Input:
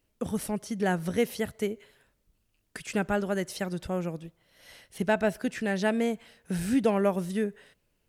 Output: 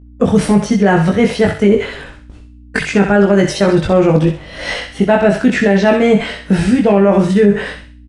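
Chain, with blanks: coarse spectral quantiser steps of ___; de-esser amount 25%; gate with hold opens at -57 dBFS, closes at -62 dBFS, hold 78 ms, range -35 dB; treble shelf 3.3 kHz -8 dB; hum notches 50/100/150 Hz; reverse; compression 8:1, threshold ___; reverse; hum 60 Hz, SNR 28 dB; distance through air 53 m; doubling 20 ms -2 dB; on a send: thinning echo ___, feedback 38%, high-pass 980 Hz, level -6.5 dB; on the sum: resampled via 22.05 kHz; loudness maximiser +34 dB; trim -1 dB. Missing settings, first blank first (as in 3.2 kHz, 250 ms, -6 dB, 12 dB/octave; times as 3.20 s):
15 dB, -41 dBFS, 64 ms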